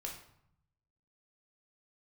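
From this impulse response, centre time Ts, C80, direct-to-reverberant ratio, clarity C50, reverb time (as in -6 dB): 28 ms, 10.0 dB, -0.5 dB, 6.0 dB, 0.70 s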